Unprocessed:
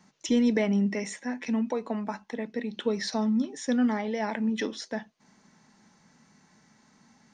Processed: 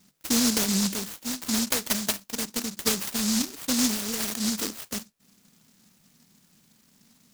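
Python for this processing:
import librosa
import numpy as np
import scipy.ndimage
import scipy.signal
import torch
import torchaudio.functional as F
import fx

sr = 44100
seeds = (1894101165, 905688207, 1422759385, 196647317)

y = fx.vibrato(x, sr, rate_hz=7.6, depth_cents=68.0)
y = fx.graphic_eq_31(y, sr, hz=(315, 630, 1250), db=(5, 11, 11), at=(1.31, 3.08))
y = fx.noise_mod_delay(y, sr, seeds[0], noise_hz=5600.0, depth_ms=0.47)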